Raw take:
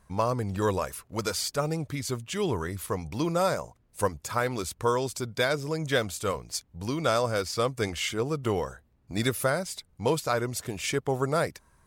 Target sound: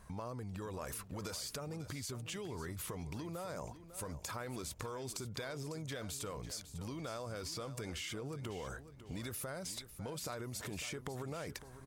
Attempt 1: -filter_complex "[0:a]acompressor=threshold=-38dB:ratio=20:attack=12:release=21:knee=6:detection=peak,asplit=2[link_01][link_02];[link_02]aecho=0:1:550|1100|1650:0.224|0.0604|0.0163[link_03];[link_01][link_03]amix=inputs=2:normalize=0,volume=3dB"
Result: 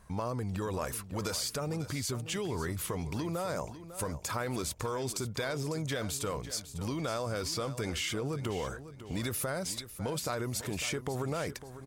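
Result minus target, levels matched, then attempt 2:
downward compressor: peak gain reduction −9 dB
-filter_complex "[0:a]acompressor=threshold=-47.5dB:ratio=20:attack=12:release=21:knee=6:detection=peak,asplit=2[link_01][link_02];[link_02]aecho=0:1:550|1100|1650:0.224|0.0604|0.0163[link_03];[link_01][link_03]amix=inputs=2:normalize=0,volume=3dB"

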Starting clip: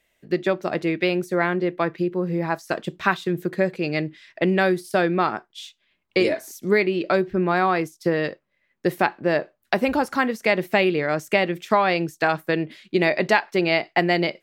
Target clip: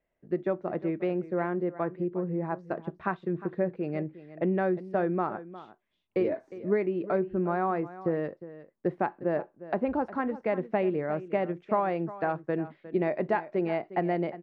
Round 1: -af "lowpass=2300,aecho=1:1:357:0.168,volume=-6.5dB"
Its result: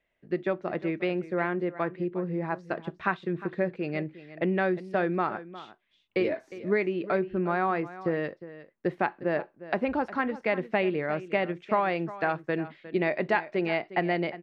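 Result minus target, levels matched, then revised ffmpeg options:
2,000 Hz band +6.5 dB
-af "lowpass=1100,aecho=1:1:357:0.168,volume=-6.5dB"

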